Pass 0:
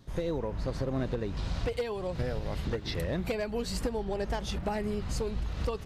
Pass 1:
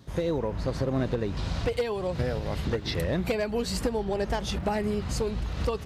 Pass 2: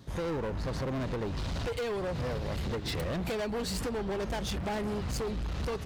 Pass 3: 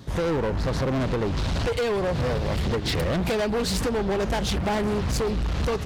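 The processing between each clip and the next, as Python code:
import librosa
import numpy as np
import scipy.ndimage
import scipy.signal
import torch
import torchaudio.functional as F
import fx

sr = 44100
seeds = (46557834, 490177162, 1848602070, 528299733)

y1 = scipy.signal.sosfilt(scipy.signal.butter(2, 51.0, 'highpass', fs=sr, output='sos'), x)
y1 = y1 * librosa.db_to_amplitude(4.5)
y2 = np.clip(y1, -10.0 ** (-30.5 / 20.0), 10.0 ** (-30.5 / 20.0))
y3 = fx.doppler_dist(y2, sr, depth_ms=0.2)
y3 = y3 * librosa.db_to_amplitude(8.5)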